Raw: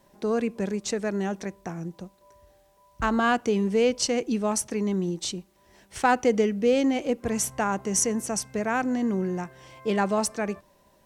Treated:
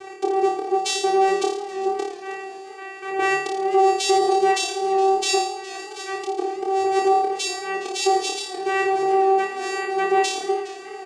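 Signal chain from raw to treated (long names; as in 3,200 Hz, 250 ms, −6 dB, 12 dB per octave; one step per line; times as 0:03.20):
downward compressor 8 to 1, threshold −36 dBFS, peak gain reduction 19.5 dB
volume swells 259 ms
bass and treble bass +12 dB, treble 0 dB
comb filter 2.1 ms, depth 48%
channel vocoder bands 4, saw 386 Hz
high-shelf EQ 5,100 Hz +9.5 dB
flutter between parallel walls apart 4.7 metres, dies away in 0.64 s
boost into a limiter +29.5 dB
feedback echo with a swinging delay time 416 ms, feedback 49%, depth 97 cents, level −18 dB
level −8.5 dB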